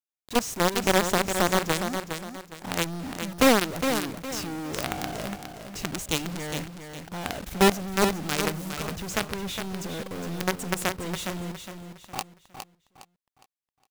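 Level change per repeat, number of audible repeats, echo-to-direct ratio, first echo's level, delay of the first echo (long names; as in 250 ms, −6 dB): −9.5 dB, 3, −7.0 dB, −7.5 dB, 411 ms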